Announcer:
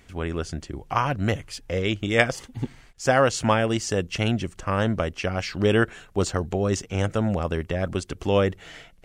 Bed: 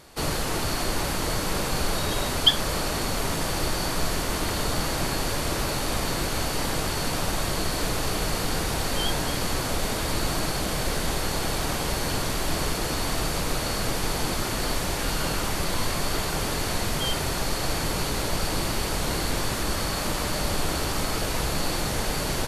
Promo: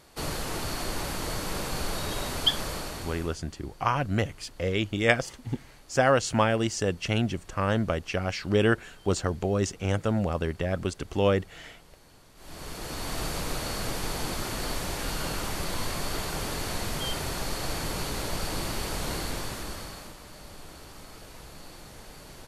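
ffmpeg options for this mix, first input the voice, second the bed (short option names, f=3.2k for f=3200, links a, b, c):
-filter_complex "[0:a]adelay=2900,volume=-2.5dB[a];[1:a]volume=18.5dB,afade=t=out:st=2.6:d=0.79:silence=0.0668344,afade=t=in:st=12.35:d=0.89:silence=0.0630957,afade=t=out:st=19.13:d=1.03:silence=0.188365[b];[a][b]amix=inputs=2:normalize=0"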